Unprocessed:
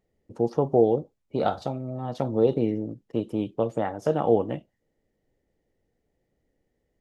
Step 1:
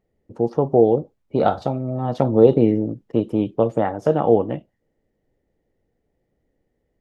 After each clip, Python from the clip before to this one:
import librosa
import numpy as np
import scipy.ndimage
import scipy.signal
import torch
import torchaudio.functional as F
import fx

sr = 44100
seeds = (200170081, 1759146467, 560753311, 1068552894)

y = fx.high_shelf(x, sr, hz=3100.0, db=-9.0)
y = fx.rider(y, sr, range_db=10, speed_s=2.0)
y = F.gain(torch.from_numpy(y), 6.0).numpy()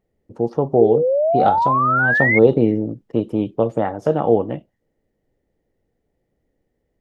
y = fx.spec_paint(x, sr, seeds[0], shape='rise', start_s=0.8, length_s=1.59, low_hz=380.0, high_hz=2200.0, level_db=-17.0)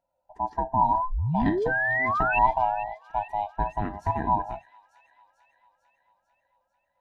y = fx.band_swap(x, sr, width_hz=500)
y = fx.echo_wet_highpass(y, sr, ms=446, feedback_pct=61, hz=3000.0, wet_db=-11.0)
y = F.gain(torch.from_numpy(y), -8.5).numpy()